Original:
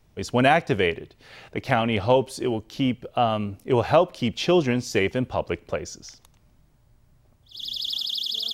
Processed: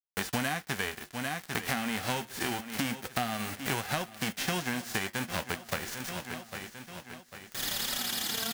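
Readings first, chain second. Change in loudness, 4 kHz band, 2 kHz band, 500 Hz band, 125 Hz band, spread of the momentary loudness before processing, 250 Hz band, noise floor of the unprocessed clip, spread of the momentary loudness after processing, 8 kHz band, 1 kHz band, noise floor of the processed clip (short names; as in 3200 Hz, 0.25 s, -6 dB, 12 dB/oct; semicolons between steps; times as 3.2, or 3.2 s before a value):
-9.5 dB, -6.0 dB, -3.5 dB, -16.5 dB, -10.0 dB, 13 LU, -10.0 dB, -60 dBFS, 10 LU, +4.5 dB, -10.0 dB, -56 dBFS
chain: spectral whitening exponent 0.3; small resonant body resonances 220/760 Hz, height 8 dB, ringing for 45 ms; requantised 6-bit, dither none; bell 1700 Hz +7.5 dB 0.71 oct; flange 0.25 Hz, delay 5.2 ms, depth 8.3 ms, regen -58%; on a send: feedback echo 0.798 s, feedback 47%, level -19 dB; on the sum: compressor 8:1, threshold -35 dBFS, peak gain reduction 21 dB; gain +5.5 dB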